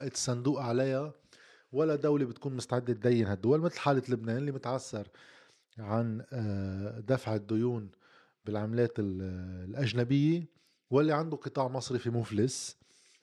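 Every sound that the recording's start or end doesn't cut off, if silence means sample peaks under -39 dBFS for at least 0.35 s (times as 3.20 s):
1.74–5.03 s
5.79–7.86 s
8.47–10.44 s
10.91–12.71 s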